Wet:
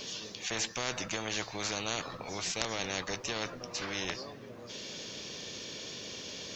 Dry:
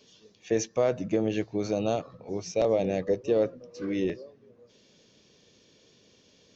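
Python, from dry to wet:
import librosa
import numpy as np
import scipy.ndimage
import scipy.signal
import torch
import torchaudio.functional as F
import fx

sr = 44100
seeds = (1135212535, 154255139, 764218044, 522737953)

y = fx.low_shelf(x, sr, hz=490.0, db=-7.0)
y = fx.spectral_comp(y, sr, ratio=4.0)
y = y * 10.0 ** (5.0 / 20.0)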